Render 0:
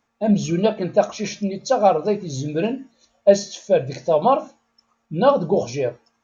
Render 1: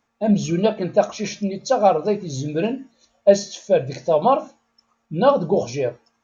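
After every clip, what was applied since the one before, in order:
no processing that can be heard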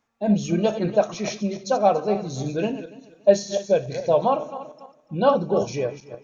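feedback delay that plays each chunk backwards 143 ms, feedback 46%, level −11.5 dB
amplitude modulation by smooth noise, depth 55%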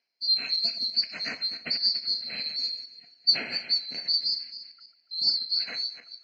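neighbouring bands swapped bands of 4,000 Hz
loudspeaker in its box 180–4,200 Hz, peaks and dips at 250 Hz +6 dB, 460 Hz +3 dB, 670 Hz +9 dB, 1,200 Hz −4 dB, 2,200 Hz +10 dB
level −3 dB

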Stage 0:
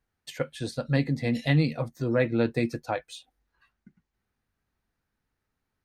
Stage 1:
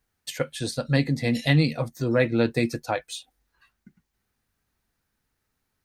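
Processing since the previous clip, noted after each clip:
high-shelf EQ 3,900 Hz +8.5 dB
level +2.5 dB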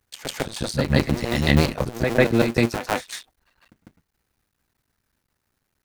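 sub-harmonics by changed cycles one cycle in 2, muted
backwards echo 150 ms −7 dB
level +5 dB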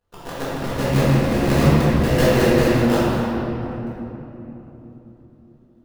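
sample-rate reduction 2,300 Hz, jitter 20%
rectangular room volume 210 cubic metres, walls hard, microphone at 1.8 metres
level −8.5 dB

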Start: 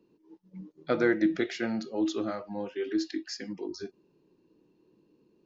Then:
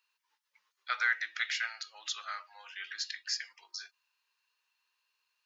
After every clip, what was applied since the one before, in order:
inverse Chebyshev high-pass filter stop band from 290 Hz, stop band 70 dB
level +5 dB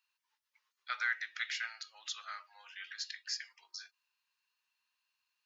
low-shelf EQ 360 Hz −12 dB
level −4 dB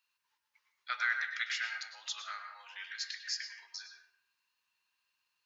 convolution reverb RT60 0.75 s, pre-delay 97 ms, DRR 4 dB
level +1.5 dB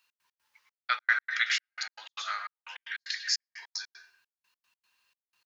gate pattern "x.x.xxx.." 152 BPM −60 dB
level +8.5 dB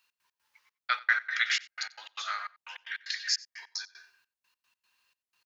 single-tap delay 92 ms −22 dB

